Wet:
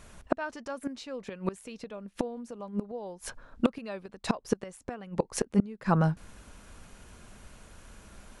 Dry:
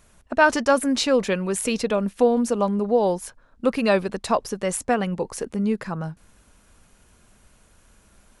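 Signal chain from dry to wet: treble shelf 9.3 kHz -9 dB; inverted gate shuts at -17 dBFS, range -25 dB; trim +5.5 dB

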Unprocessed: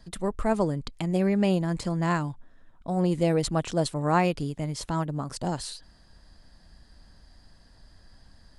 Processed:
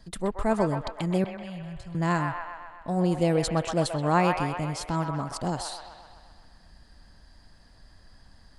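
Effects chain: 1.24–1.95 s: FFT filter 130 Hz 0 dB, 260 Hz -27 dB, 3.4 kHz -11 dB, 5 kHz -16 dB; feedback echo behind a band-pass 128 ms, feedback 62%, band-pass 1.4 kHz, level -3.5 dB

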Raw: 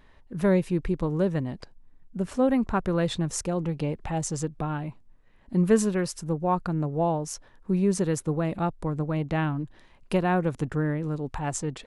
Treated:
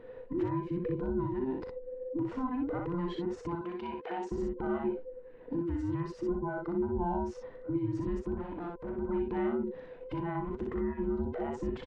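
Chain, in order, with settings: every band turned upside down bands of 500 Hz; 3.55–4.32 s: high-pass 1.5 kHz 6 dB/octave; compression 6:1, threshold -33 dBFS, peak gain reduction 17.5 dB; peak limiter -31.5 dBFS, peak gain reduction 10.5 dB; 8.36–8.96 s: valve stage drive 40 dB, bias 0.45; tape spacing loss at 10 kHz 40 dB; early reflections 39 ms -10 dB, 61 ms -3.5 dB; trim +6 dB

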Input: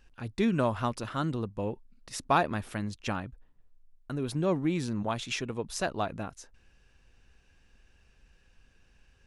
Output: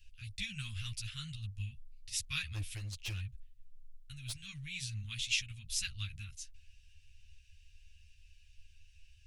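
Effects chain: elliptic band-stop 100–2600 Hz, stop band 70 dB; 2.54–4.51 s: hard clipper -37.5 dBFS, distortion -20 dB; three-phase chorus; trim +6 dB

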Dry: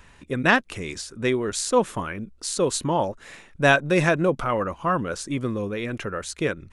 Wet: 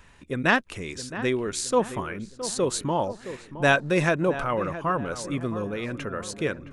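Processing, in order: filtered feedback delay 667 ms, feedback 49%, low-pass 1.7 kHz, level -12 dB; trim -2.5 dB

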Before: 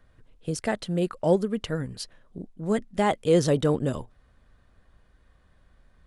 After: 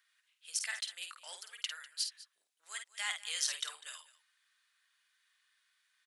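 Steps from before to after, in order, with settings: Bessel high-pass 2.6 kHz, order 4; multi-tap echo 51/199 ms -7/-18.5 dB; trim +2 dB

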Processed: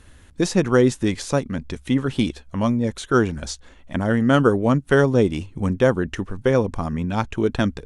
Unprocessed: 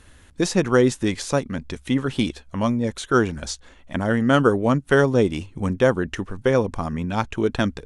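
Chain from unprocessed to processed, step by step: bass shelf 380 Hz +3.5 dB; trim -1 dB

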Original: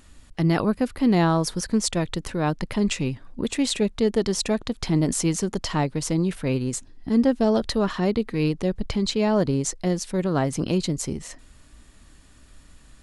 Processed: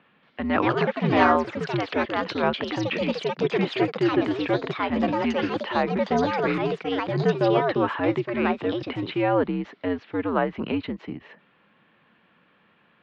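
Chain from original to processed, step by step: dynamic bell 1.4 kHz, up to +5 dB, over -38 dBFS, Q 0.72; mistuned SSB -87 Hz 290–3100 Hz; ever faster or slower copies 229 ms, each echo +4 st, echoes 2

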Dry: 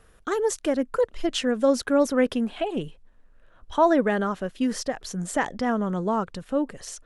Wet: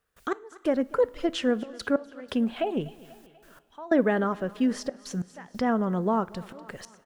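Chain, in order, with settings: high-pass 44 Hz 6 dB/octave; treble shelf 3.9 kHz -11.5 dB; word length cut 12-bit, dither triangular; trance gate ".x..xxxxxx" 92 bpm -24 dB; on a send: feedback delay 244 ms, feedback 51%, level -23 dB; on the sum: two-slope reverb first 0.4 s, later 3.1 s, from -18 dB, DRR 18 dB; tape noise reduction on one side only encoder only

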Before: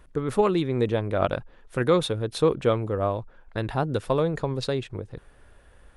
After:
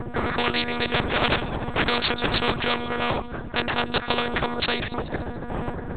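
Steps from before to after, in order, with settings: local Wiener filter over 15 samples; wind noise 93 Hz -28 dBFS; on a send: feedback echo behind a high-pass 144 ms, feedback 51%, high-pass 2.8 kHz, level -16.5 dB; on the sum: monotone LPC vocoder at 8 kHz 240 Hz; spectrum-flattening compressor 4:1

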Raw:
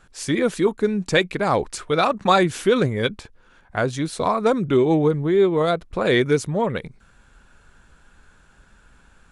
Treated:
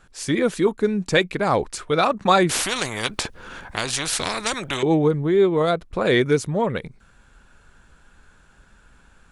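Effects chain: 2.49–4.83 s: spectrum-flattening compressor 4:1

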